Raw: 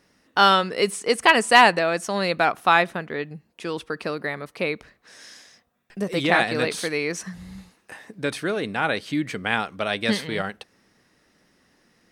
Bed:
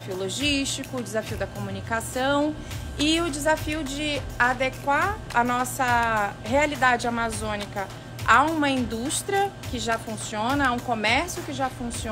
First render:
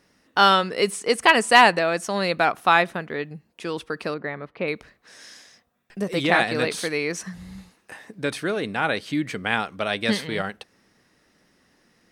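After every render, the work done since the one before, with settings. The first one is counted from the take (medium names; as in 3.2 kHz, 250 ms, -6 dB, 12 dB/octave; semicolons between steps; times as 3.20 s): 4.14–4.68 s: distance through air 350 m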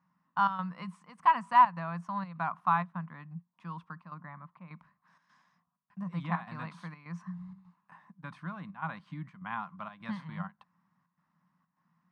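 square tremolo 1.7 Hz, depth 65%, duty 80%; two resonant band-passes 420 Hz, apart 2.6 oct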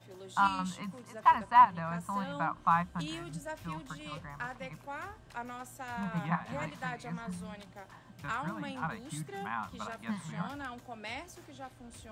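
add bed -19.5 dB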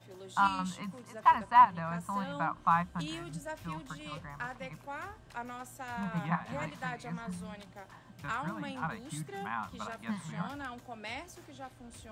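no audible change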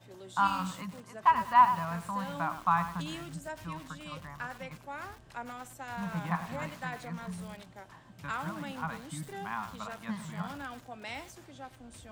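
bit-crushed delay 102 ms, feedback 35%, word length 7-bit, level -10 dB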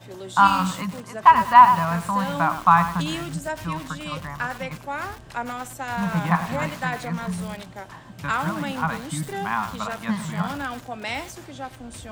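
trim +11.5 dB; peak limiter -2 dBFS, peak gain reduction 2.5 dB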